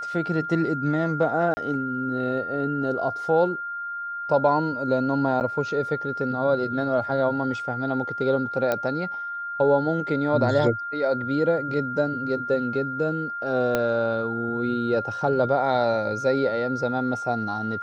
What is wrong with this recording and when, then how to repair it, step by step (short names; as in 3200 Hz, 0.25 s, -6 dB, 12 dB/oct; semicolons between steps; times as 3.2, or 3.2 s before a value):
tone 1400 Hz -29 dBFS
1.54–1.57 gap 30 ms
5.4–5.41 gap 9.2 ms
8.72 pop -11 dBFS
13.75 pop -9 dBFS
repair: de-click; notch 1400 Hz, Q 30; interpolate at 1.54, 30 ms; interpolate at 5.4, 9.2 ms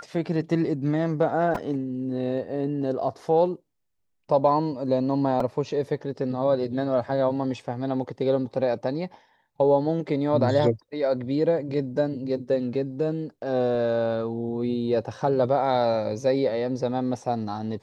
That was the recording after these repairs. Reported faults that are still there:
13.75 pop